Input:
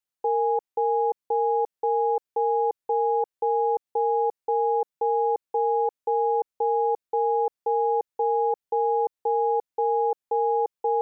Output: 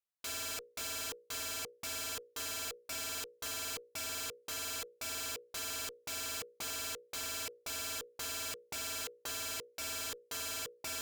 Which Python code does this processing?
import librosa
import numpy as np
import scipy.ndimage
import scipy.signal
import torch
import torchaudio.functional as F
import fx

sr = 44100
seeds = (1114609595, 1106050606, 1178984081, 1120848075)

y = fx.hum_notches(x, sr, base_hz=60, count=9)
y = (np.mod(10.0 ** (29.5 / 20.0) * y + 1.0, 2.0) - 1.0) / 10.0 ** (29.5 / 20.0)
y = fx.cheby_harmonics(y, sr, harmonics=(3,), levels_db=(-22,), full_scale_db=-29.5)
y = y * librosa.db_to_amplitude(-4.5)